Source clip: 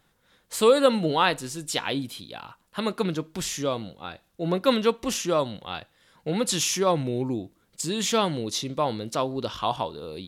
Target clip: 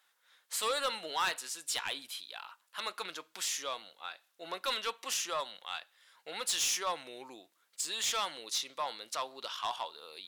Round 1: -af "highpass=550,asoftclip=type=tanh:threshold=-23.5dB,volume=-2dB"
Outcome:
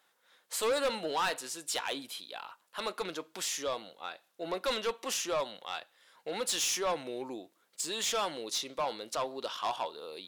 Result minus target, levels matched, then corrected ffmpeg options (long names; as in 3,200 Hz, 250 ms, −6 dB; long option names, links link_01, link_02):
500 Hz band +6.5 dB
-af "highpass=1100,asoftclip=type=tanh:threshold=-23.5dB,volume=-2dB"